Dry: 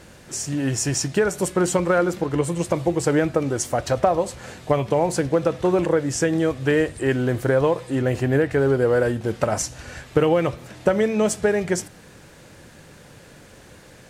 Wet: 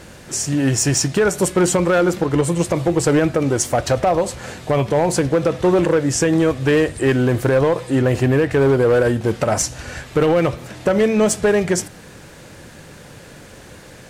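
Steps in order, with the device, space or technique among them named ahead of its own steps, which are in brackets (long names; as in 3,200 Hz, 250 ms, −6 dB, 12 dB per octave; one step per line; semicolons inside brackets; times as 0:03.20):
limiter into clipper (brickwall limiter −12 dBFS, peak gain reduction 6.5 dB; hard clipping −16 dBFS, distortion −19 dB)
level +6 dB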